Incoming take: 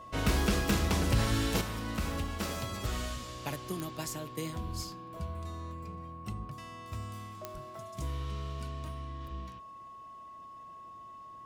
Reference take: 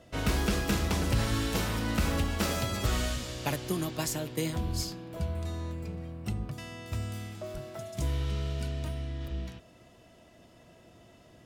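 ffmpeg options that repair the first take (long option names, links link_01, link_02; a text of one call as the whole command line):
ffmpeg -i in.wav -af "adeclick=threshold=4,bandreject=frequency=1100:width=30,asetnsamples=nb_out_samples=441:pad=0,asendcmd='1.61 volume volume 6dB',volume=0dB" out.wav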